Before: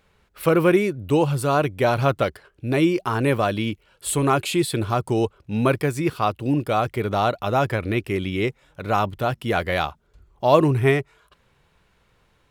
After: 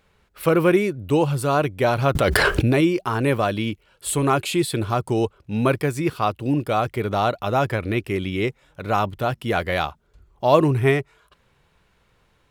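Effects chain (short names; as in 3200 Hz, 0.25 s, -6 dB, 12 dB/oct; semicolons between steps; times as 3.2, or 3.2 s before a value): 2.15–2.81 fast leveller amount 100%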